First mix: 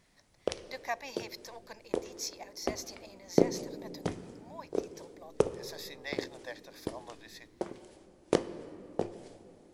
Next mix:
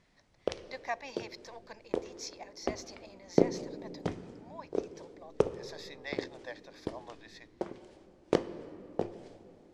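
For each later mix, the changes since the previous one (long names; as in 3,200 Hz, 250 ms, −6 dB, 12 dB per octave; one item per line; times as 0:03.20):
master: add high-frequency loss of the air 85 metres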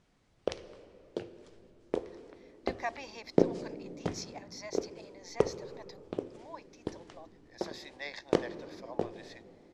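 speech: entry +1.95 s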